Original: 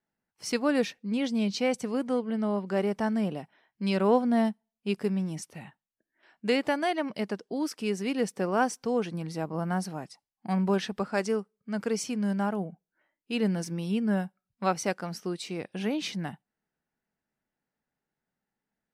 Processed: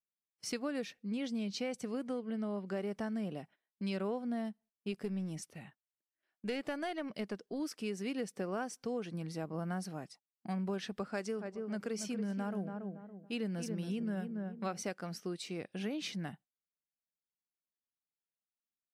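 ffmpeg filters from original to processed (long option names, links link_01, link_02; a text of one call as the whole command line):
ffmpeg -i in.wav -filter_complex "[0:a]asettb=1/sr,asplit=3[link_01][link_02][link_03];[link_01]atrim=end=4.924[link_04];[link_02]atrim=start=4.92:end=7.6,asetpts=PTS-STARTPTS,afade=type=in:duration=0.004:curve=qsin,afade=type=out:start_time=2.676:duration=0.004:curve=qsin,aeval=exprs='(tanh(7.94*val(0)+0.2)-tanh(0.2))/7.94':channel_layout=same[link_05];[link_03]atrim=start=7.596[link_06];[link_04][link_05]acrossfade=duration=0.004:curve1=hsin:curve2=qsin[link_07];[link_07][link_06]acrossfade=duration=0.004:curve1=qsin:curve2=hsin,asplit=3[link_08][link_09][link_10];[link_08]afade=type=out:start_time=11.36:duration=0.02[link_11];[link_09]asplit=2[link_12][link_13];[link_13]adelay=281,lowpass=frequency=1200:poles=1,volume=-7dB,asplit=2[link_14][link_15];[link_15]adelay=281,lowpass=frequency=1200:poles=1,volume=0.37,asplit=2[link_16][link_17];[link_17]adelay=281,lowpass=frequency=1200:poles=1,volume=0.37,asplit=2[link_18][link_19];[link_19]adelay=281,lowpass=frequency=1200:poles=1,volume=0.37[link_20];[link_12][link_14][link_16][link_18][link_20]amix=inputs=5:normalize=0,afade=type=in:start_time=11.36:duration=0.02,afade=type=out:start_time=14.81:duration=0.02[link_21];[link_10]afade=type=in:start_time=14.81:duration=0.02[link_22];[link_11][link_21][link_22]amix=inputs=3:normalize=0,agate=range=-18dB:threshold=-51dB:ratio=16:detection=peak,equalizer=frequency=910:width_type=o:width=0.35:gain=-6,acompressor=threshold=-28dB:ratio=6,volume=-5.5dB" out.wav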